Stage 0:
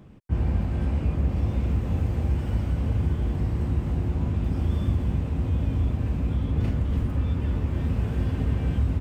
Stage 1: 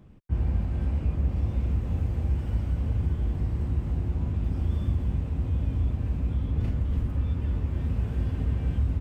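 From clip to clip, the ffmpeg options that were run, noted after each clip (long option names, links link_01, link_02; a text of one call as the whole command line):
ffmpeg -i in.wav -af "lowshelf=frequency=72:gain=9,volume=-6dB" out.wav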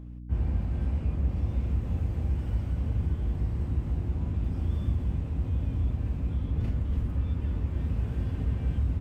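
ffmpeg -i in.wav -af "aeval=exprs='val(0)+0.0126*(sin(2*PI*60*n/s)+sin(2*PI*2*60*n/s)/2+sin(2*PI*3*60*n/s)/3+sin(2*PI*4*60*n/s)/4+sin(2*PI*5*60*n/s)/5)':channel_layout=same,volume=-2dB" out.wav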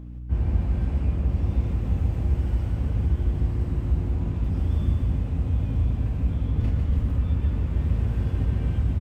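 ffmpeg -i in.wav -af "aecho=1:1:148:0.562,volume=3.5dB" out.wav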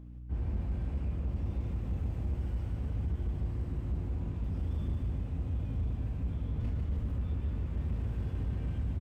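ffmpeg -i in.wav -af "asoftclip=type=hard:threshold=-19dB,volume=-9dB" out.wav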